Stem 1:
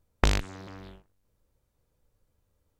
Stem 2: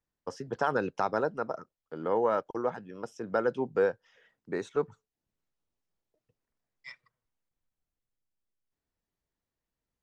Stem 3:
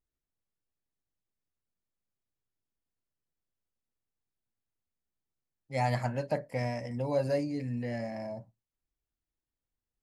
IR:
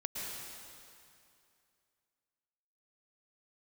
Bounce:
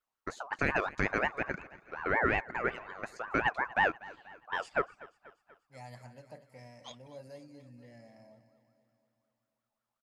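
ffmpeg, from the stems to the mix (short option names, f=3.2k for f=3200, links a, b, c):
-filter_complex "[1:a]aeval=exprs='val(0)*sin(2*PI*1100*n/s+1100*0.25/5.5*sin(2*PI*5.5*n/s))':c=same,volume=1dB,asplit=2[a][b];[b]volume=-20.5dB[c];[2:a]highshelf=f=4.7k:g=9,volume=-19.5dB,asplit=2[d][e];[e]volume=-13dB[f];[c][f]amix=inputs=2:normalize=0,aecho=0:1:242|484|726|968|1210|1452|1694|1936|2178:1|0.57|0.325|0.185|0.106|0.0602|0.0343|0.0195|0.0111[g];[a][d][g]amix=inputs=3:normalize=0"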